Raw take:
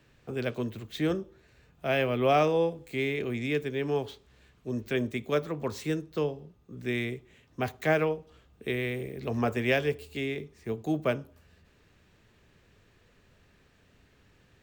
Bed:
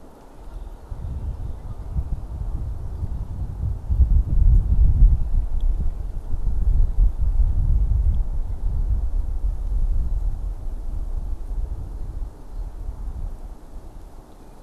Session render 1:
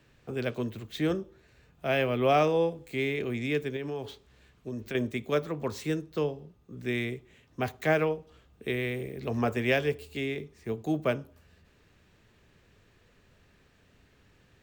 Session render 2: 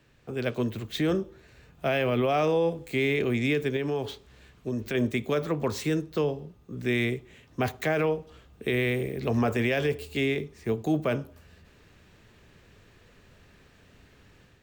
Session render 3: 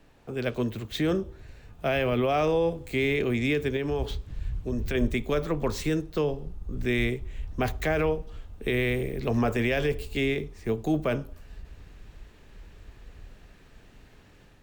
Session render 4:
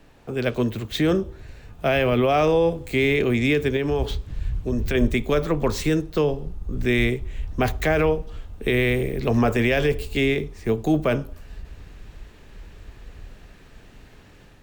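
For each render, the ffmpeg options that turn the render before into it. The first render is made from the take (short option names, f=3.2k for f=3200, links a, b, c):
-filter_complex "[0:a]asettb=1/sr,asplit=3[a][b][c];[a]atrim=end=3.764[d];[b]atrim=start=3.76:end=4.95,asetpts=PTS-STARTPTS,afade=t=in:d=0.004:c=qsin,afade=t=out:st=1.186:d=0.004:c=qsin,acompressor=threshold=-31dB:ratio=6:attack=3.2:release=140:knee=1:detection=peak[e];[c]atrim=start=4.946[f];[d][e]acrossfade=d=0.004:c1=hsin:c2=qsin[g];[g][f]acrossfade=d=0.004:c1=qsin:c2=hsin"
-af "dynaudnorm=f=370:g=3:m=6dB,alimiter=limit=-17dB:level=0:latency=1:release=37"
-filter_complex "[1:a]volume=-17dB[a];[0:a][a]amix=inputs=2:normalize=0"
-af "volume=5.5dB"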